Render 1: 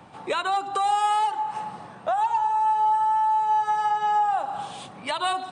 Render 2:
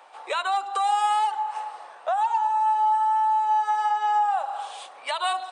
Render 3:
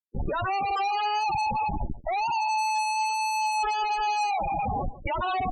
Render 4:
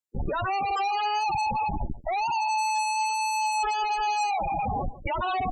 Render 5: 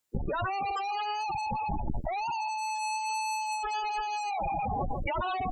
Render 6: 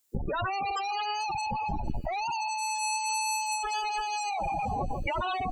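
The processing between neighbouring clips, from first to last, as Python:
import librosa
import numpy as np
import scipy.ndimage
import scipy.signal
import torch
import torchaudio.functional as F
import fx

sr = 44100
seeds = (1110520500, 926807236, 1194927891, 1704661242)

y1 = scipy.signal.sosfilt(scipy.signal.butter(4, 530.0, 'highpass', fs=sr, output='sos'), x)
y2 = fx.schmitt(y1, sr, flips_db=-35.5)
y2 = y2 + 10.0 ** (-15.5 / 20.0) * np.pad(y2, (int(142 * sr / 1000.0), 0))[:len(y2)]
y2 = fx.spec_topn(y2, sr, count=16)
y2 = y2 * librosa.db_to_amplitude(-1.5)
y3 = fx.peak_eq(y2, sr, hz=7300.0, db=9.0, octaves=0.2)
y4 = fx.over_compress(y3, sr, threshold_db=-35.0, ratio=-1.0)
y4 = y4 * librosa.db_to_amplitude(3.5)
y5 = fx.high_shelf(y4, sr, hz=4400.0, db=11.0)
y5 = fx.echo_wet_highpass(y5, sr, ms=458, feedback_pct=61, hz=2500.0, wet_db=-23)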